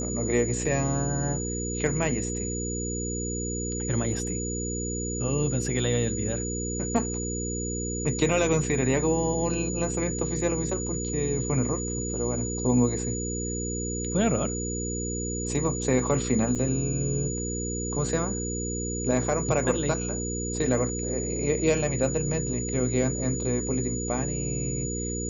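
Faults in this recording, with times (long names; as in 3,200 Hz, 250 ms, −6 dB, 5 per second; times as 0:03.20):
mains hum 60 Hz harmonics 8 −32 dBFS
whistle 6,900 Hz −33 dBFS
0:16.55–0:16.56: drop-out 6.9 ms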